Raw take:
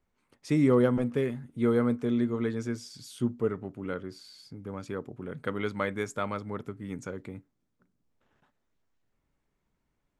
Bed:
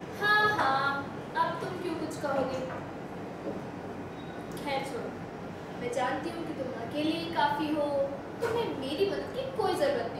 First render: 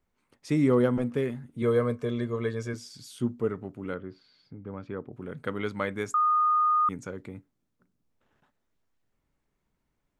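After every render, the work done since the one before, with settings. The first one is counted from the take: 1.62–2.74 comb 1.8 ms; 3.95–5.13 air absorption 320 m; 6.14–6.89 bleep 1230 Hz -20 dBFS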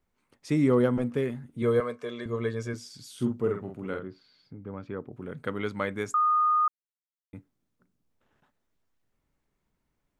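1.8–2.26 weighting filter A; 3.13–4.08 doubler 47 ms -4.5 dB; 6.68–7.33 mute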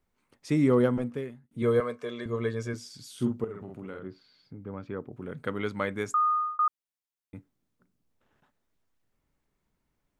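0.86–1.51 fade out; 3.44–4.05 compressor 4:1, threshold -36 dBFS; 6.12–6.59 fade out equal-power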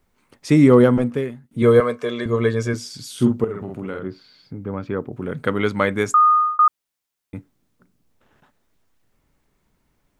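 gain +11 dB; limiter -3 dBFS, peak gain reduction 2 dB

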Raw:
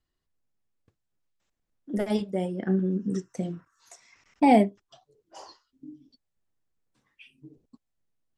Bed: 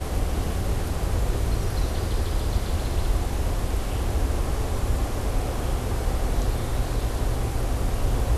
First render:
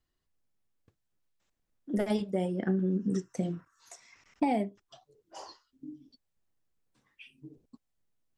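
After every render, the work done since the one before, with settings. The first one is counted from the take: compressor 12:1, threshold -24 dBFS, peak gain reduction 12 dB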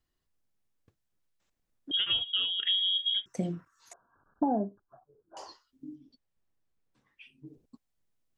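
1.91–3.26 inverted band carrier 3500 Hz; 3.93–5.37 brick-wall FIR low-pass 1700 Hz; 5.95–7.47 high shelf 6100 Hz -10 dB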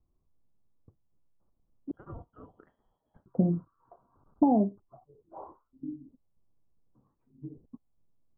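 steep low-pass 1200 Hz 48 dB/oct; low shelf 370 Hz +9.5 dB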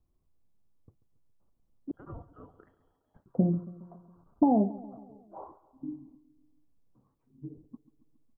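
feedback echo 0.138 s, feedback 59%, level -18 dB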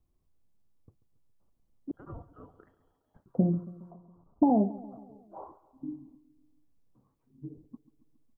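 3.91–4.5 LPF 1100 Hz 24 dB/oct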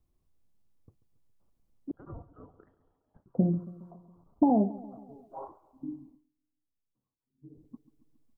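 1.91–3.59 LPF 1300 Hz -> 1100 Hz 6 dB/oct; 5.08–5.48 comb 7.4 ms, depth 93%; 6.03–7.67 dip -19.5 dB, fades 0.28 s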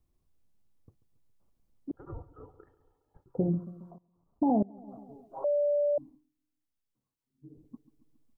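1.95–3.48 comb 2.3 ms; 3.98–4.88 level quantiser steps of 24 dB; 5.44–5.98 bleep 583 Hz -23.5 dBFS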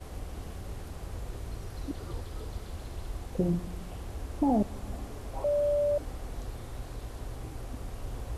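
add bed -14.5 dB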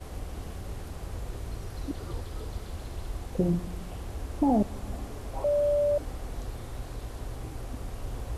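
gain +2 dB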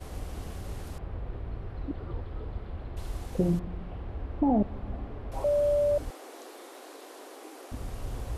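0.98–2.97 air absorption 440 m; 3.59–5.32 air absorption 410 m; 6.1–7.72 steep high-pass 290 Hz 48 dB/oct

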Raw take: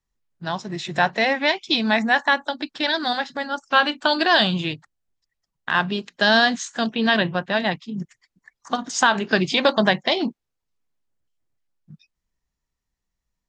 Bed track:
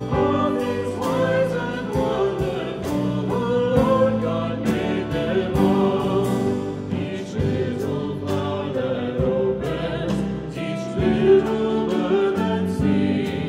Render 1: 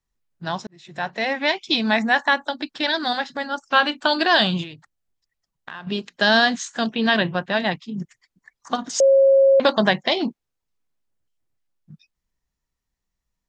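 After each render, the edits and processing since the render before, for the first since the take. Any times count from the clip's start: 0.67–1.56 fade in; 4.63–5.87 compressor 5:1, threshold -33 dBFS; 9–9.6 bleep 543 Hz -10.5 dBFS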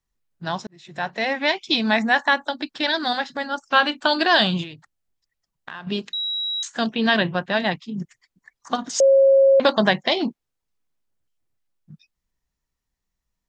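6.13–6.63 bleep 3870 Hz -23 dBFS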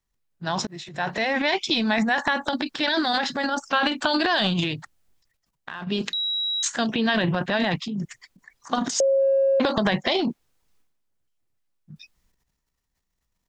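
transient shaper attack 0 dB, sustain +12 dB; compressor 4:1, threshold -19 dBFS, peak gain reduction 8 dB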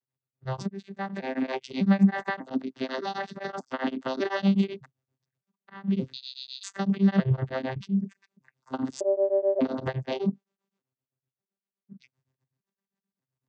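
arpeggiated vocoder bare fifth, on C3, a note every 0.599 s; beating tremolo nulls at 7.8 Hz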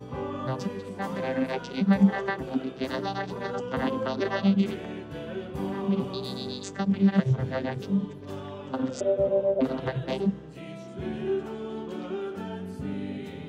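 add bed track -14 dB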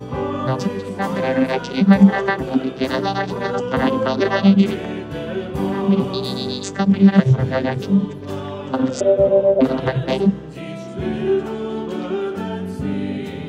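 gain +10 dB; limiter -1 dBFS, peak gain reduction 1.5 dB

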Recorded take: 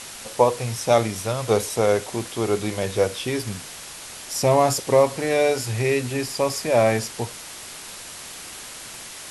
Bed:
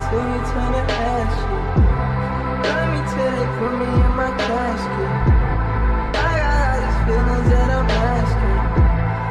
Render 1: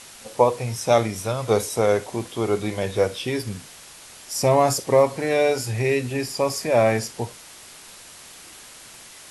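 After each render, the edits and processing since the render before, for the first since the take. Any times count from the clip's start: noise print and reduce 6 dB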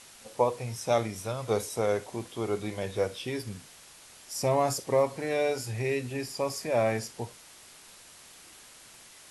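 gain -8 dB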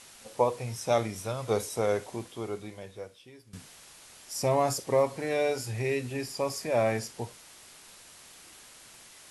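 2.09–3.53 fade out quadratic, to -19.5 dB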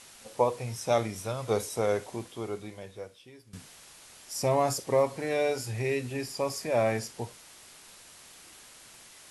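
nothing audible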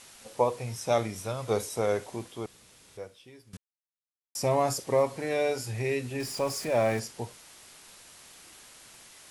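2.46–2.97 room tone; 3.57–4.35 mute; 6.2–7 zero-crossing step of -40 dBFS

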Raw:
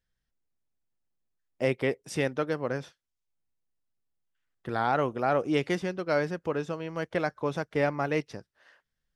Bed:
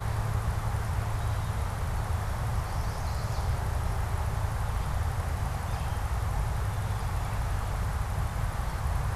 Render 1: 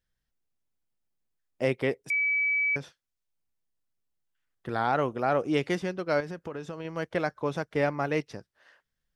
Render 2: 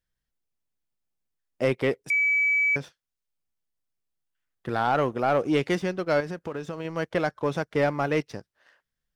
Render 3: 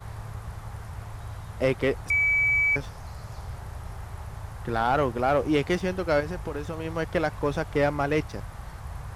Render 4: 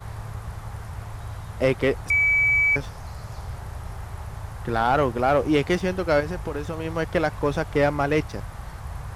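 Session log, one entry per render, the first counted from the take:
2.1–2.76 bleep 2290 Hz -23 dBFS; 6.2–6.85 compressor, threshold -32 dBFS
sample leveller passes 1
add bed -8 dB
gain +3 dB

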